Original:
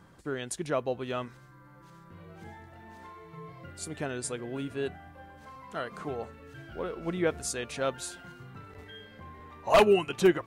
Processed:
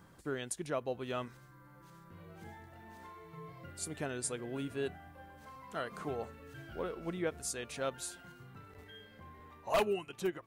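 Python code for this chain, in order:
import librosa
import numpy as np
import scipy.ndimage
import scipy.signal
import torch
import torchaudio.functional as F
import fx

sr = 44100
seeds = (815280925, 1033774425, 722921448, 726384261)

y = fx.high_shelf(x, sr, hz=11000.0, db=11.0)
y = fx.rider(y, sr, range_db=5, speed_s=0.5)
y = fx.end_taper(y, sr, db_per_s=530.0)
y = y * librosa.db_to_amplitude(-8.0)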